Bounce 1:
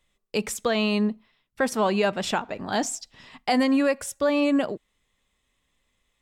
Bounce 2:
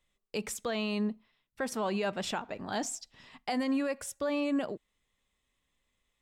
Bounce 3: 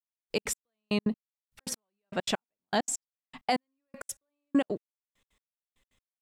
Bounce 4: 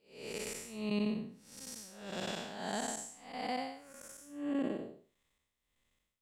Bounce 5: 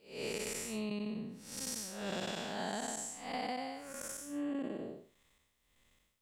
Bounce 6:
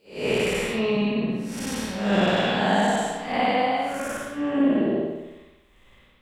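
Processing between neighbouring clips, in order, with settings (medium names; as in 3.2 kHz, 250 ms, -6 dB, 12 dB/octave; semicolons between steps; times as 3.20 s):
peak limiter -17 dBFS, peak gain reduction 5.5 dB; trim -6.5 dB
trance gate "....x.x." 198 bpm -60 dB; trim +6.5 dB
spectral blur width 294 ms; trim +3 dB
compression 12:1, threshold -43 dBFS, peak gain reduction 15 dB; trim +8 dB
reverberation RT60 1.0 s, pre-delay 54 ms, DRR -14.5 dB; trim +3 dB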